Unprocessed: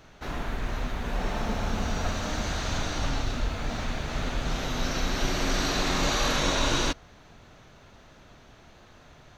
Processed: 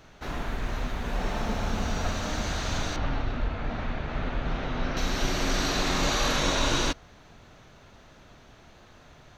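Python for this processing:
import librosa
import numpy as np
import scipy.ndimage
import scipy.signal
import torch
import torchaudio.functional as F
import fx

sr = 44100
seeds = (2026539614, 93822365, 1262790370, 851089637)

y = fx.lowpass(x, sr, hz=2500.0, slope=12, at=(2.96, 4.97))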